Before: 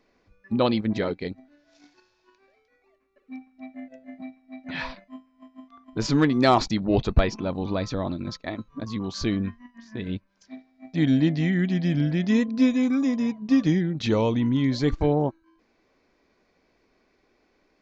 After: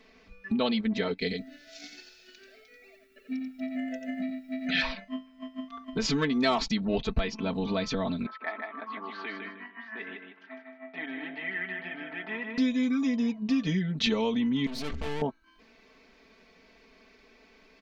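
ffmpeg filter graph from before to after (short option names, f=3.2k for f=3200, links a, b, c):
-filter_complex "[0:a]asettb=1/sr,asplit=3[a][b][c];[a]atrim=end=1.184[d];[b]atrim=start=1.18:end=4.82,asetpts=PTS-STARTPTS,afade=t=in:d=0.004:c=qsin,afade=t=out:st=3.636:d=0.004:c=qsin,asuperstop=centerf=1000:order=8:qfactor=2.4,aemphasis=mode=production:type=50kf,aecho=1:1:88:0.501,atrim=end_sample=160524[e];[c]atrim=start=4.816[f];[d][e]acrossfade=d=0.004:c1=hsin:c2=qsin[g];[g][f]acrossfade=d=0.004:c1=qsin:c2=hsin,asettb=1/sr,asplit=3[h][i][j];[h]atrim=end=8.264[k];[i]atrim=start=8.26:end=12.58,asetpts=PTS-STARTPTS,afade=t=in:d=0.004:c=qsin,afade=t=out:st=4.316:d=0.004:c=qsin,acompressor=threshold=-44dB:ratio=2:attack=3.2:release=140:knee=1:detection=peak,highpass=f=360:w=0.5412,highpass=f=360:w=1.3066,equalizer=f=480:t=q:w=4:g=-9,equalizer=f=820:t=q:w=4:g=7,equalizer=f=1.3k:t=q:w=4:g=9,equalizer=f=1.9k:t=q:w=4:g=4,lowpass=f=2.5k:w=0.5412,lowpass=f=2.5k:w=1.3066,aecho=1:1:154|308|462:0.562|0.141|0.0351,atrim=end_sample=190512[l];[j]atrim=start=12.576[m];[k][l]acrossfade=d=0.004:c1=hsin:c2=qsin[n];[n][m]acrossfade=d=0.004:c1=qsin:c2=hsin,asettb=1/sr,asplit=3[o][p][q];[o]atrim=end=14.664[r];[p]atrim=start=14.66:end=15.22,asetpts=PTS-STARTPTS,afade=t=in:d=0.004:c=qsin,afade=t=out:st=0.556:d=0.004:c=qsin,equalizer=f=74:t=o:w=0.62:g=13.5,bandreject=f=133.7:t=h:w=4,bandreject=f=267.4:t=h:w=4,bandreject=f=401.1:t=h:w=4,bandreject=f=534.8:t=h:w=4,bandreject=f=668.5:t=h:w=4,bandreject=f=802.2:t=h:w=4,bandreject=f=935.9:t=h:w=4,bandreject=f=1.0696k:t=h:w=4,bandreject=f=1.2033k:t=h:w=4,bandreject=f=1.337k:t=h:w=4,bandreject=f=1.4707k:t=h:w=4,bandreject=f=1.6044k:t=h:w=4,bandreject=f=1.7381k:t=h:w=4,bandreject=f=1.8718k:t=h:w=4,bandreject=f=2.0055k:t=h:w=4,bandreject=f=2.1392k:t=h:w=4,bandreject=f=2.2729k:t=h:w=4,bandreject=f=2.4066k:t=h:w=4,bandreject=f=2.5403k:t=h:w=4,aeval=exprs='(tanh(56.2*val(0)+0.6)-tanh(0.6))/56.2':c=same[s];[q]atrim=start=15.216[t];[r][s]acrossfade=d=0.004:c1=hsin:c2=qsin[u];[u][t]acrossfade=d=0.004:c1=qsin:c2=hsin,aecho=1:1:4.5:0.92,acompressor=threshold=-35dB:ratio=2.5,equalizer=f=2.9k:w=0.97:g=7.5,volume=3.5dB"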